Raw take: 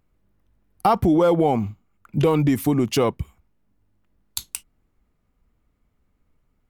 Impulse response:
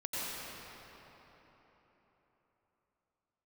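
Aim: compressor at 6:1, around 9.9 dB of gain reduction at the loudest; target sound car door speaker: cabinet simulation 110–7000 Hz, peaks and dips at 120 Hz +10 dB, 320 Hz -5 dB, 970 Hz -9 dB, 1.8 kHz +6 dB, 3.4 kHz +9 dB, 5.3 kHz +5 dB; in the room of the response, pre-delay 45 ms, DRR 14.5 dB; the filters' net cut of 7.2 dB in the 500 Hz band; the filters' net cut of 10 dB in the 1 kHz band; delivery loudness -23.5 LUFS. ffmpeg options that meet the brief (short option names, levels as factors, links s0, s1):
-filter_complex "[0:a]equalizer=f=500:t=o:g=-5.5,equalizer=f=1000:t=o:g=-8,acompressor=threshold=0.0447:ratio=6,asplit=2[s0][s1];[1:a]atrim=start_sample=2205,adelay=45[s2];[s1][s2]afir=irnorm=-1:irlink=0,volume=0.106[s3];[s0][s3]amix=inputs=2:normalize=0,highpass=110,equalizer=f=120:t=q:w=4:g=10,equalizer=f=320:t=q:w=4:g=-5,equalizer=f=970:t=q:w=4:g=-9,equalizer=f=1800:t=q:w=4:g=6,equalizer=f=3400:t=q:w=4:g=9,equalizer=f=5300:t=q:w=4:g=5,lowpass=f=7000:w=0.5412,lowpass=f=7000:w=1.3066,volume=2.66"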